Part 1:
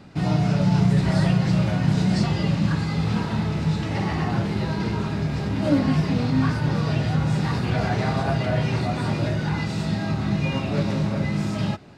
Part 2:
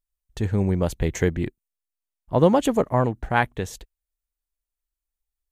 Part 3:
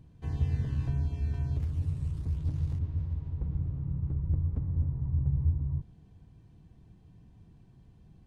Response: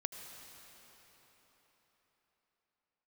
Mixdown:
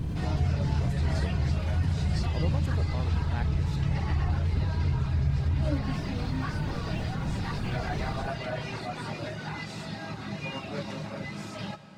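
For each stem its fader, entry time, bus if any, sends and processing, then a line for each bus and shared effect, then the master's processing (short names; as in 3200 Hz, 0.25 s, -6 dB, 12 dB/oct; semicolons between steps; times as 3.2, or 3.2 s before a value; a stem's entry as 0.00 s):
-8.5 dB, 0.00 s, send -3 dB, reverb removal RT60 0.59 s; low shelf 310 Hz -10.5 dB
-17.5 dB, 0.00 s, no send, dry
-1.0 dB, 0.00 s, send -3 dB, tremolo triangle 2.9 Hz, depth 90%; fast leveller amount 70%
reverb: on, RT60 4.5 s, pre-delay 72 ms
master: compressor 1.5:1, threshold -27 dBFS, peak gain reduction 3.5 dB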